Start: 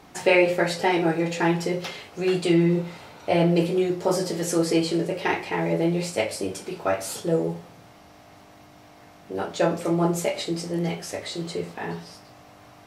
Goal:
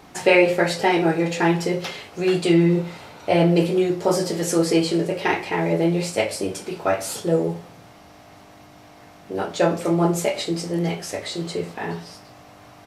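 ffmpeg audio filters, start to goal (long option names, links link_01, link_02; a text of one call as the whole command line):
ffmpeg -i in.wav -af "aresample=32000,aresample=44100,volume=3dB" out.wav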